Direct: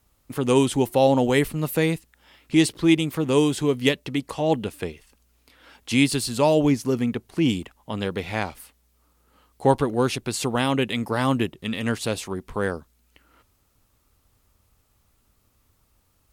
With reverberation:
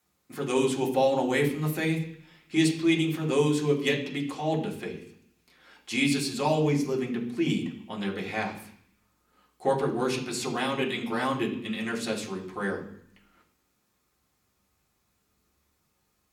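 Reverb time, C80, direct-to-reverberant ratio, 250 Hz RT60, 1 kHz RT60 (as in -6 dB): 0.65 s, 11.5 dB, -3.0 dB, 0.90 s, 0.70 s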